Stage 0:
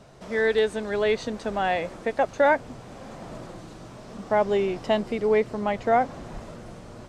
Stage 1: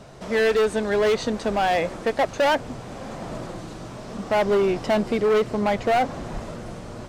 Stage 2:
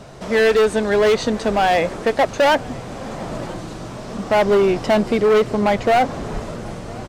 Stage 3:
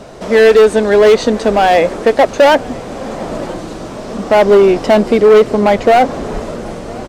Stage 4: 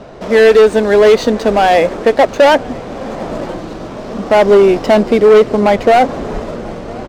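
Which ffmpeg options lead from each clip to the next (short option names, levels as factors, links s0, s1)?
-af "volume=13.3,asoftclip=hard,volume=0.075,volume=2"
-af "aecho=1:1:994:0.0631,volume=1.78"
-af "equalizer=f=125:t=o:w=1:g=-6,equalizer=f=250:t=o:w=1:g=3,equalizer=f=500:t=o:w=1:g=4,volume=1.68"
-af "adynamicsmooth=sensitivity=6.5:basefreq=3400"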